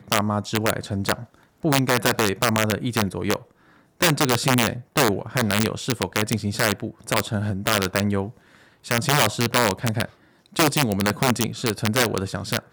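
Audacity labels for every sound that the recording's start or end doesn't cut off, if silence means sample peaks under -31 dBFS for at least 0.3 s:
1.640000	3.360000	sound
4.010000	8.300000	sound
8.860000	10.050000	sound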